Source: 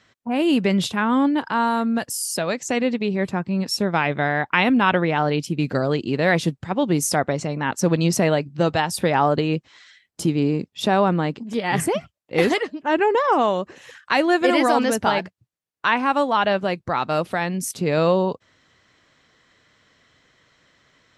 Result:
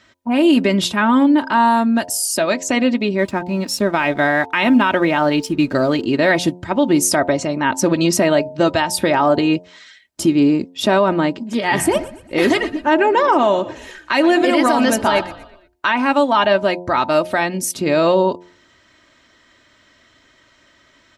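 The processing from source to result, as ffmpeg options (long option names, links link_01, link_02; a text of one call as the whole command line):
ffmpeg -i in.wav -filter_complex "[0:a]asplit=3[link_01][link_02][link_03];[link_01]afade=type=out:start_time=3.17:duration=0.02[link_04];[link_02]aeval=exprs='sgn(val(0))*max(abs(val(0))-0.00355,0)':channel_layout=same,afade=type=in:start_time=3.17:duration=0.02,afade=type=out:start_time=6.05:duration=0.02[link_05];[link_03]afade=type=in:start_time=6.05:duration=0.02[link_06];[link_04][link_05][link_06]amix=inputs=3:normalize=0,asettb=1/sr,asplit=3[link_07][link_08][link_09];[link_07]atrim=end=11.414[link_10];[link_08]atrim=start=11.41:end=15.92,asetpts=PTS-STARTPTS,afade=type=in:duration=0.004:curve=qsin,afade=type=out:start_time=4.506:duration=0.004:curve=qsin,asplit=5[link_11][link_12][link_13][link_14][link_15];[link_12]adelay=118,afreqshift=-60,volume=-17.5dB[link_16];[link_13]adelay=236,afreqshift=-120,volume=-24.2dB[link_17];[link_14]adelay=354,afreqshift=-180,volume=-31dB[link_18];[link_15]adelay=472,afreqshift=-240,volume=-37.7dB[link_19];[link_11][link_16][link_17][link_18][link_19]amix=inputs=5:normalize=0,atrim=end_sample=198891[link_20];[link_09]atrim=start=15.916[link_21];[link_10][link_20]acrossfade=duration=0.004:curve1=hsin:curve2=qsin[link_22];[link_22][link_21]acrossfade=duration=0.004:curve1=qsin:curve2=hsin,aecho=1:1:3.2:0.56,bandreject=frequency=88.93:width_type=h:width=4,bandreject=frequency=177.86:width_type=h:width=4,bandreject=frequency=266.79:width_type=h:width=4,bandreject=frequency=355.72:width_type=h:width=4,bandreject=frequency=444.65:width_type=h:width=4,bandreject=frequency=533.58:width_type=h:width=4,bandreject=frequency=622.51:width_type=h:width=4,bandreject=frequency=711.44:width_type=h:width=4,bandreject=frequency=800.37:width_type=h:width=4,bandreject=frequency=889.3:width_type=h:width=4,bandreject=frequency=978.23:width_type=h:width=4,alimiter=limit=-10.5dB:level=0:latency=1:release=65,volume=5dB" out.wav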